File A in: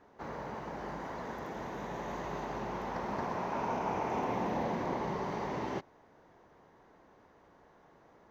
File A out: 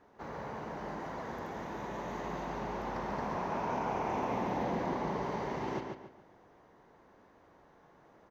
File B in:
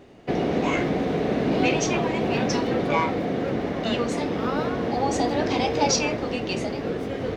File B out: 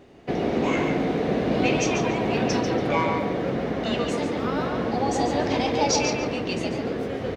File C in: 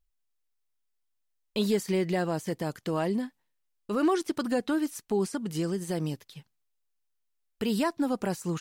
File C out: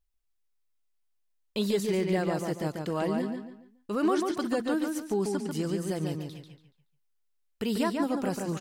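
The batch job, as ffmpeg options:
-filter_complex "[0:a]asplit=2[s0][s1];[s1]adelay=142,lowpass=f=5000:p=1,volume=0.631,asplit=2[s2][s3];[s3]adelay=142,lowpass=f=5000:p=1,volume=0.34,asplit=2[s4][s5];[s5]adelay=142,lowpass=f=5000:p=1,volume=0.34,asplit=2[s6][s7];[s7]adelay=142,lowpass=f=5000:p=1,volume=0.34[s8];[s0][s2][s4][s6][s8]amix=inputs=5:normalize=0,volume=0.841"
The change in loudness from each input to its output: 0.0 LU, 0.0 LU, -0.5 LU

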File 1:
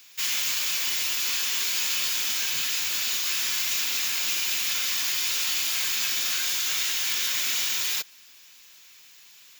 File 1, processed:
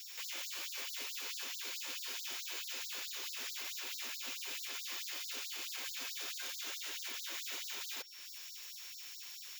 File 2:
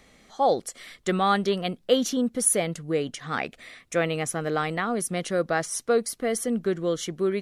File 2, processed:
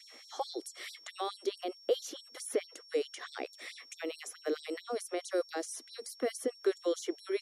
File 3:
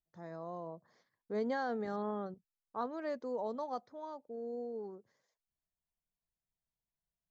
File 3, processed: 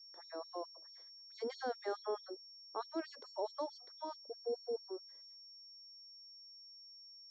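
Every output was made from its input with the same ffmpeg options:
-filter_complex "[0:a]acrossover=split=470|4000[s0][s1][s2];[s0]acompressor=threshold=0.0141:ratio=4[s3];[s1]acompressor=threshold=0.00794:ratio=4[s4];[s2]acompressor=threshold=0.00794:ratio=4[s5];[s3][s4][s5]amix=inputs=3:normalize=0,aeval=exprs='val(0)+0.00158*sin(2*PI*5500*n/s)':c=same,adynamicequalizer=threshold=0.00355:dfrequency=380:dqfactor=1.4:tfrequency=380:tqfactor=1.4:attack=5:release=100:ratio=0.375:range=3:mode=boostabove:tftype=bell,acrossover=split=120|1100[s6][s7][s8];[s8]alimiter=level_in=3.55:limit=0.0631:level=0:latency=1:release=79,volume=0.282[s9];[s6][s7][s9]amix=inputs=3:normalize=0,afftfilt=real='re*gte(b*sr/1024,240*pow(3900/240,0.5+0.5*sin(2*PI*4.6*pts/sr)))':imag='im*gte(b*sr/1024,240*pow(3900/240,0.5+0.5*sin(2*PI*4.6*pts/sr)))':win_size=1024:overlap=0.75,volume=1.26"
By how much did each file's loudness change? 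-17.0 LU, -11.5 LU, -5.0 LU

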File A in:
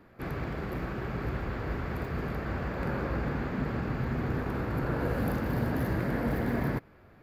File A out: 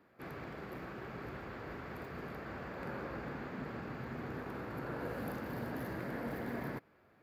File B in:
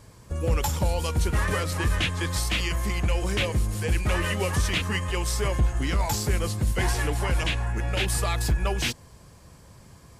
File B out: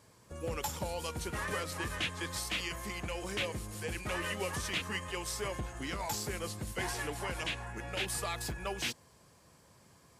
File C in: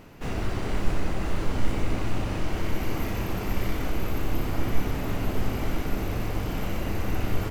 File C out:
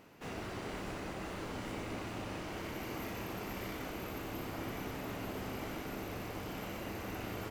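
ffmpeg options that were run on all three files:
-af "highpass=f=240:p=1,volume=0.422"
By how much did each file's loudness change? -10.5 LU, -10.5 LU, -11.0 LU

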